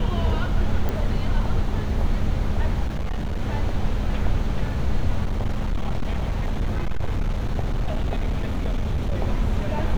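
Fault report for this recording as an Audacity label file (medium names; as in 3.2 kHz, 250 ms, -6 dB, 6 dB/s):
0.890000	0.890000	pop -13 dBFS
2.860000	3.410000	clipped -22 dBFS
5.250000	9.210000	clipped -19 dBFS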